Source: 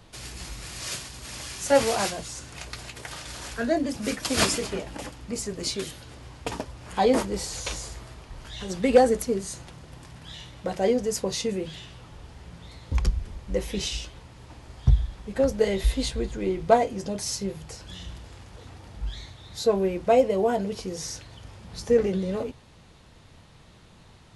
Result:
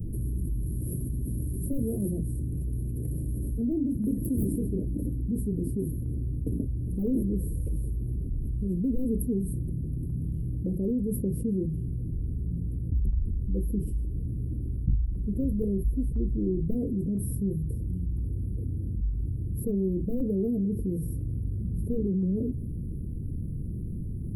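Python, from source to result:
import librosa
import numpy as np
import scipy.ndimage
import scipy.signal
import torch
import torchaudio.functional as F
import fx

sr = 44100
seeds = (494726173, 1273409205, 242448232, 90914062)

y = np.minimum(x, 2.0 * 10.0 ** (-15.5 / 20.0) - x)
y = scipy.signal.sosfilt(scipy.signal.cheby2(4, 50, [800.0, 6800.0], 'bandstop', fs=sr, output='sos'), y)
y = fx.low_shelf(y, sr, hz=190.0, db=5.5)
y = fx.tremolo_shape(y, sr, shape='saw_down', hz=0.99, depth_pct=35)
y = fx.env_flatten(y, sr, amount_pct=70)
y = F.gain(torch.from_numpy(y), -8.5).numpy()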